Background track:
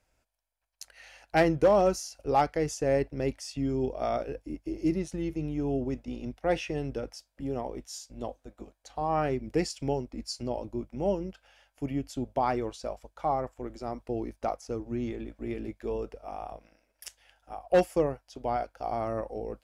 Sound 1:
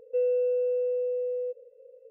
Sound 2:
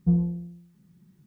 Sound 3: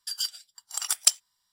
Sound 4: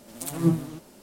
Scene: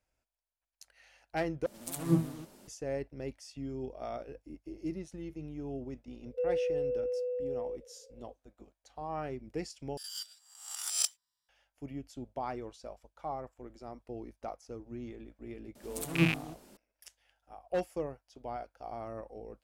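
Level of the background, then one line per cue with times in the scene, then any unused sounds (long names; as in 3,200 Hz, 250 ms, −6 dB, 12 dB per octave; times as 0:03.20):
background track −10 dB
0:01.66: overwrite with 4 −5.5 dB
0:06.24: mix in 1 −6 dB
0:09.97: overwrite with 3 −14 dB + peak hold with a rise ahead of every peak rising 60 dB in 0.66 s
0:15.75: mix in 4 −6 dB + loose part that buzzes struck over −32 dBFS, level −13 dBFS
not used: 2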